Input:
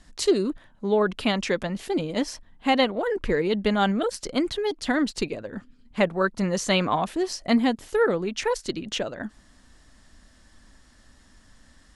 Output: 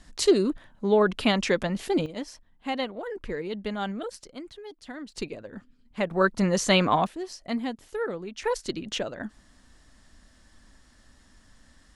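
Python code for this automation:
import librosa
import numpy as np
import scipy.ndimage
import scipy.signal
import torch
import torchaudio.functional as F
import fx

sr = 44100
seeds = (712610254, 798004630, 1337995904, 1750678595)

y = fx.gain(x, sr, db=fx.steps((0.0, 1.0), (2.06, -9.0), (4.24, -16.0), (5.12, -6.0), (6.11, 1.5), (7.07, -9.0), (8.44, -2.0)))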